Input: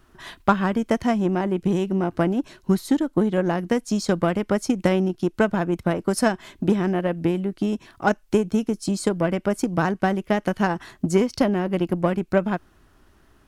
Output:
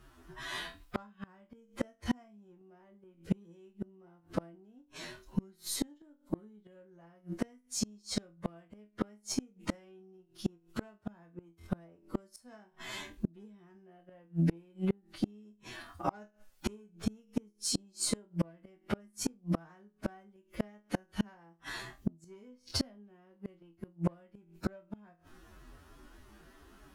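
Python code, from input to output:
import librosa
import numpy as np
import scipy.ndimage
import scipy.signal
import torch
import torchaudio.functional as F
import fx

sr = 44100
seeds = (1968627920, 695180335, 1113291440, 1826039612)

p1 = fx.rider(x, sr, range_db=4, speed_s=2.0)
p2 = fx.cheby_harmonics(p1, sr, harmonics=(2, 5, 6), levels_db=(-37, -42, -27), full_scale_db=-4.5)
p3 = fx.stretch_vocoder(p2, sr, factor=2.0)
p4 = p3 + fx.room_flutter(p3, sr, wall_m=4.1, rt60_s=0.22, dry=0)
y = fx.gate_flip(p4, sr, shuts_db=-18.0, range_db=-36)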